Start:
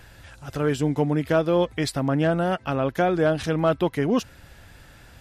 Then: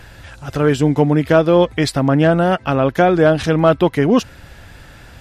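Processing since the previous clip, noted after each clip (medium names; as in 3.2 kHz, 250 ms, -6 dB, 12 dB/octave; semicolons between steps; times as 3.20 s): treble shelf 7.9 kHz -6 dB; trim +8.5 dB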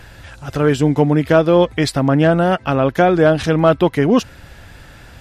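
no audible change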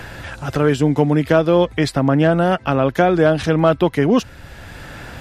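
three bands compressed up and down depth 40%; trim -1.5 dB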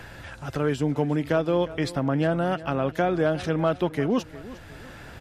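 feedback delay 356 ms, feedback 43%, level -17 dB; trim -9 dB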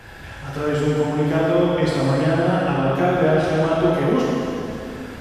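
plate-style reverb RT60 2.8 s, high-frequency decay 0.9×, DRR -7.5 dB; trim -2 dB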